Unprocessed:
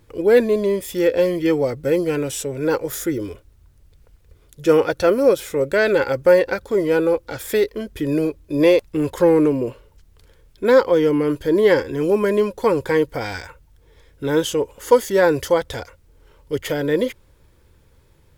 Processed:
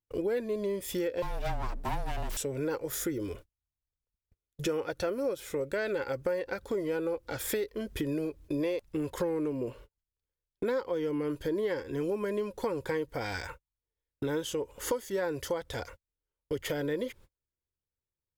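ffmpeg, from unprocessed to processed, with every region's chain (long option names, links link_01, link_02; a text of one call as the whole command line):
ffmpeg -i in.wav -filter_complex "[0:a]asettb=1/sr,asplit=3[link_01][link_02][link_03];[link_01]atrim=end=1.224[link_04];[link_02]atrim=start=1.22:end=2.37,asetpts=PTS-STARTPTS,afade=type=in:duration=0.004:curve=qsin,afade=type=out:start_time=1.146:duration=0.004:curve=qsin,aeval=exprs='abs(val(0))':channel_layout=same,afreqshift=-29[link_05];[link_03]atrim=start=2.366[link_06];[link_04][link_05]acrossfade=duration=0.004:curve1=hsin:curve2=qsin[link_07];[link_07][link_06]acrossfade=duration=0.004:curve1=qsin:curve2=hsin,agate=range=-41dB:threshold=-41dB:ratio=16:detection=peak,acompressor=threshold=-31dB:ratio=5" out.wav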